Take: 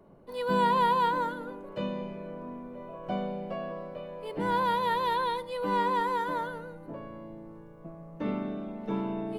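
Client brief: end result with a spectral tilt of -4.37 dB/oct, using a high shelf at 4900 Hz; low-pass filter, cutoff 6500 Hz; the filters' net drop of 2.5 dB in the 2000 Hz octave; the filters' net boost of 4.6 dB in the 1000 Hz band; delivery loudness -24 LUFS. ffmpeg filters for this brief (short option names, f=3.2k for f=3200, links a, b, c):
-af "lowpass=6.5k,equalizer=f=1k:t=o:g=6,equalizer=f=2k:t=o:g=-6.5,highshelf=f=4.9k:g=-3,volume=2.5dB"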